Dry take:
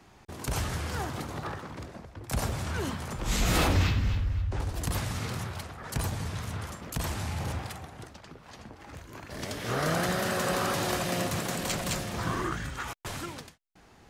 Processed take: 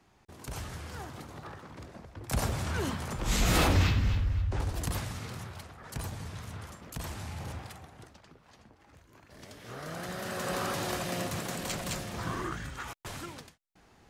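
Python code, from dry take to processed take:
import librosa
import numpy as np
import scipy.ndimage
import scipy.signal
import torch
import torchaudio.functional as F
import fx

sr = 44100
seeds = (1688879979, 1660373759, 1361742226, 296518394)

y = fx.gain(x, sr, db=fx.line((1.49, -8.5), (2.3, 0.0), (4.73, 0.0), (5.22, -6.5), (8.1, -6.5), (8.91, -13.0), (9.85, -13.0), (10.56, -4.0)))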